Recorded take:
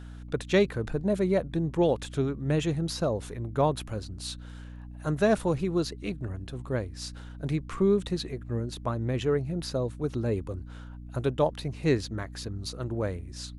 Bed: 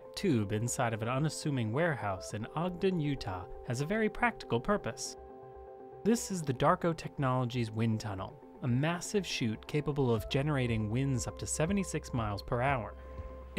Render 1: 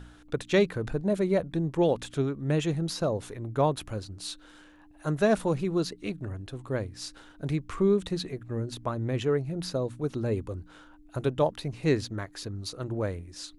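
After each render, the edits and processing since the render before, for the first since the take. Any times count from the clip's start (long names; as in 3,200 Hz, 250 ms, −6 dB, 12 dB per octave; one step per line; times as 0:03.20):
hum removal 60 Hz, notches 4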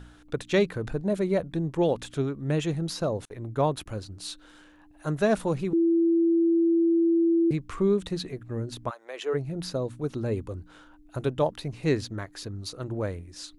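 0:03.25–0:03.86: noise gate −42 dBFS, range −36 dB
0:05.73–0:07.51: beep over 334 Hz −18.5 dBFS
0:08.89–0:09.33: high-pass filter 820 Hz → 360 Hz 24 dB per octave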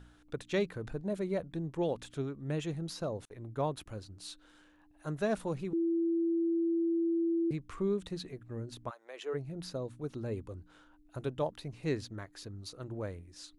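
level −8.5 dB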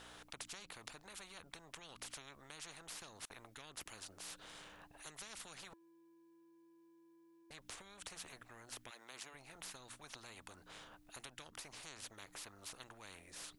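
downward compressor, threshold −36 dBFS, peak gain reduction 10 dB
every bin compressed towards the loudest bin 10 to 1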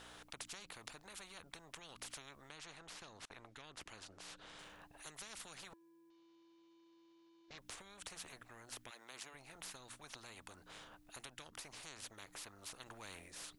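0:02.49–0:04.59: high-frequency loss of the air 62 metres
0:06.10–0:07.58: variable-slope delta modulation 32 kbit/s
0:12.86–0:13.28: leveller curve on the samples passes 1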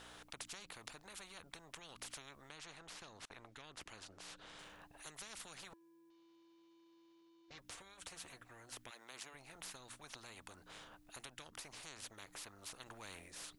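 0:07.21–0:08.77: notch comb filter 210 Hz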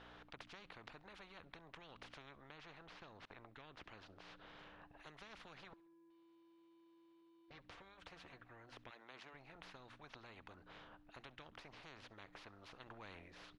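high-frequency loss of the air 280 metres
repeating echo 67 ms, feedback 52%, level −23 dB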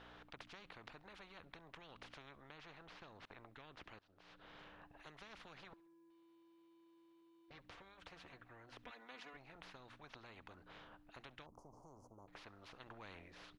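0:03.99–0:04.55: fade in, from −23 dB
0:08.83–0:09.37: comb filter 4.1 ms, depth 82%
0:11.46–0:12.28: elliptic band-stop filter 1,000–6,300 Hz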